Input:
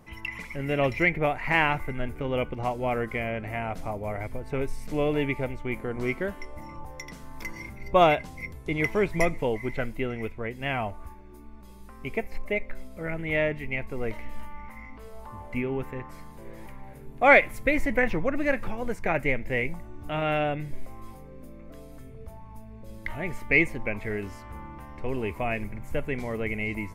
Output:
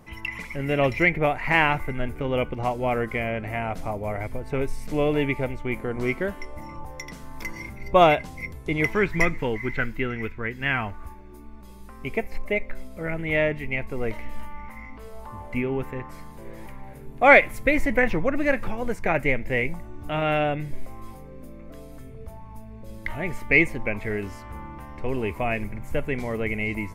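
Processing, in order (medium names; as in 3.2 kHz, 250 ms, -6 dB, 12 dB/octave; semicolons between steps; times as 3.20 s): 8.93–11.03 s: fifteen-band graphic EQ 630 Hz -9 dB, 1.6 kHz +8 dB, 10 kHz -8 dB; trim +3 dB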